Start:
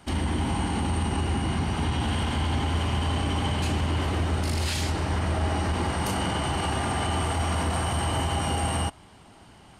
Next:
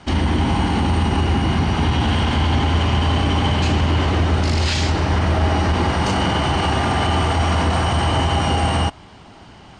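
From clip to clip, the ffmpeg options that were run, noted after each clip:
ffmpeg -i in.wav -af "lowpass=frequency=6700:width=0.5412,lowpass=frequency=6700:width=1.3066,volume=8.5dB" out.wav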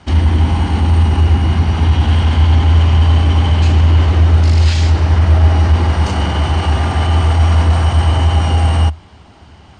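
ffmpeg -i in.wav -af "equalizer=frequency=77:width_type=o:width=0.48:gain=13,volume=-1dB" out.wav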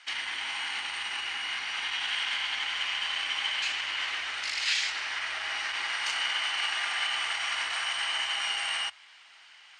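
ffmpeg -i in.wav -af "highpass=frequency=2000:width_type=q:width=1.7,volume=-5dB" out.wav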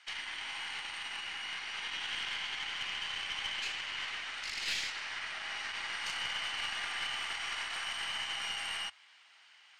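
ffmpeg -i in.wav -af "aeval=exprs='(tanh(10*val(0)+0.45)-tanh(0.45))/10':channel_layout=same,volume=-5dB" out.wav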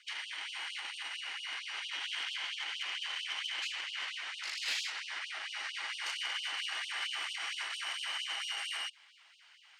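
ffmpeg -i in.wav -af "afftfilt=real='re*gte(b*sr/1024,250*pow(2700/250,0.5+0.5*sin(2*PI*4.4*pts/sr)))':imag='im*gte(b*sr/1024,250*pow(2700/250,0.5+0.5*sin(2*PI*4.4*pts/sr)))':win_size=1024:overlap=0.75" out.wav

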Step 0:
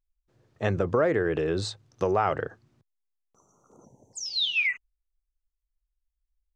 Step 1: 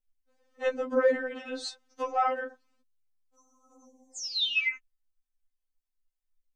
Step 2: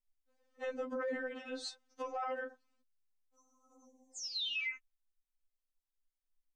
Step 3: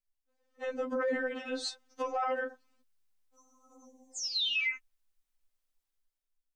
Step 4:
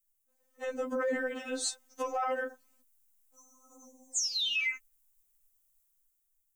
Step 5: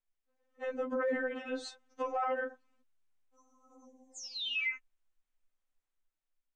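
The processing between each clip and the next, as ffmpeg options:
ffmpeg -i in.wav -af "afftfilt=real='re*3.46*eq(mod(b,12),0)':imag='im*3.46*eq(mod(b,12),0)':win_size=2048:overlap=0.75" out.wav
ffmpeg -i in.wav -af "alimiter=level_in=1dB:limit=-24dB:level=0:latency=1:release=22,volume=-1dB,volume=-6dB" out.wav
ffmpeg -i in.wav -af "dynaudnorm=framelen=120:gausssize=11:maxgain=10dB,volume=-3.5dB" out.wav
ffmpeg -i in.wav -af "aexciter=amount=4:drive=6.9:freq=6500" out.wav
ffmpeg -i in.wav -af "lowpass=2900,volume=-1dB" out.wav

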